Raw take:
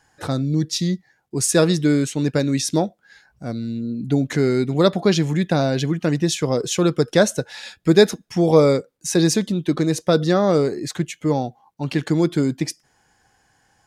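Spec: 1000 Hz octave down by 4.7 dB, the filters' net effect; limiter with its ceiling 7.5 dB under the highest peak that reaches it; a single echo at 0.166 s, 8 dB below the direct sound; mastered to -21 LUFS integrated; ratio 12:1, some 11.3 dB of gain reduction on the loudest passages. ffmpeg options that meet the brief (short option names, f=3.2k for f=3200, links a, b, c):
-af "equalizer=f=1k:t=o:g=-7,acompressor=threshold=-20dB:ratio=12,alimiter=limit=-17.5dB:level=0:latency=1,aecho=1:1:166:0.398,volume=6.5dB"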